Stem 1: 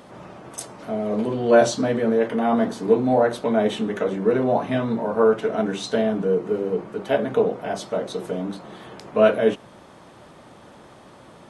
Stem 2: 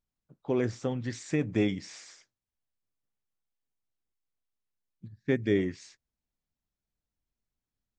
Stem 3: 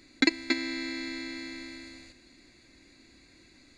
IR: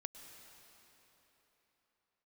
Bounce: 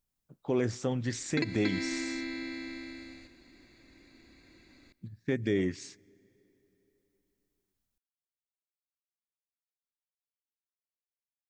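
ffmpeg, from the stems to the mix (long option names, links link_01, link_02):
-filter_complex "[1:a]highshelf=frequency=6700:gain=8.5,volume=1dB,asplit=2[link_01][link_02];[link_02]volume=-21dB[link_03];[2:a]aemphasis=mode=reproduction:type=50fm,adelay=1150,volume=-2dB,asplit=2[link_04][link_05];[link_05]volume=-9dB[link_06];[3:a]atrim=start_sample=2205[link_07];[link_03][link_06]amix=inputs=2:normalize=0[link_08];[link_08][link_07]afir=irnorm=-1:irlink=0[link_09];[link_01][link_04][link_09]amix=inputs=3:normalize=0,alimiter=limit=-18.5dB:level=0:latency=1:release=87"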